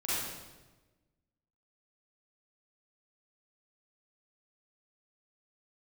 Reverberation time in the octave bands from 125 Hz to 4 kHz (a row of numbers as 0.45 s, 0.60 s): 1.6 s, 1.5 s, 1.3 s, 1.1 s, 1.0 s, 0.95 s